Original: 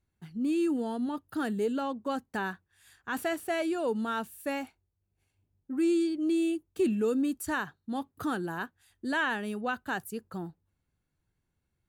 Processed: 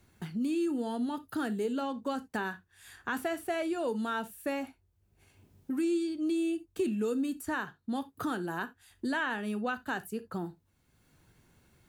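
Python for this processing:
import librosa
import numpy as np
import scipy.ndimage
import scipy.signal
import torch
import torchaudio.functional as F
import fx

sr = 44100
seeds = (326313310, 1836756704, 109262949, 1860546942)

y = fx.rev_gated(x, sr, seeds[0], gate_ms=100, shape='falling', drr_db=11.0)
y = fx.band_squash(y, sr, depth_pct=70)
y = F.gain(torch.from_numpy(y), -2.5).numpy()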